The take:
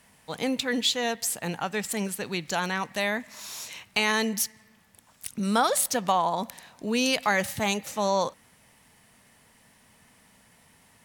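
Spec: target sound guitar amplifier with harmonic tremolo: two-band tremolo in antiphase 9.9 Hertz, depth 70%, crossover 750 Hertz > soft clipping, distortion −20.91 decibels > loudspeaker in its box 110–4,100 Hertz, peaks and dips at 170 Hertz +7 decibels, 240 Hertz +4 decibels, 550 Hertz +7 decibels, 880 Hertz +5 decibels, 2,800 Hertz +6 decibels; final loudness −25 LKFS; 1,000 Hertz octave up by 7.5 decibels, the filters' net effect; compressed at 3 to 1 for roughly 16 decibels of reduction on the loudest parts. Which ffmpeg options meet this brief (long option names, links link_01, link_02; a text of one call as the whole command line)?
ffmpeg -i in.wav -filter_complex "[0:a]equalizer=frequency=1000:width_type=o:gain=5,acompressor=threshold=-38dB:ratio=3,acrossover=split=750[link_01][link_02];[link_01]aeval=exprs='val(0)*(1-0.7/2+0.7/2*cos(2*PI*9.9*n/s))':channel_layout=same[link_03];[link_02]aeval=exprs='val(0)*(1-0.7/2-0.7/2*cos(2*PI*9.9*n/s))':channel_layout=same[link_04];[link_03][link_04]amix=inputs=2:normalize=0,asoftclip=threshold=-28.5dB,highpass=110,equalizer=frequency=170:width_type=q:width=4:gain=7,equalizer=frequency=240:width_type=q:width=4:gain=4,equalizer=frequency=550:width_type=q:width=4:gain=7,equalizer=frequency=880:width_type=q:width=4:gain=5,equalizer=frequency=2800:width_type=q:width=4:gain=6,lowpass=frequency=4100:width=0.5412,lowpass=frequency=4100:width=1.3066,volume=14.5dB" out.wav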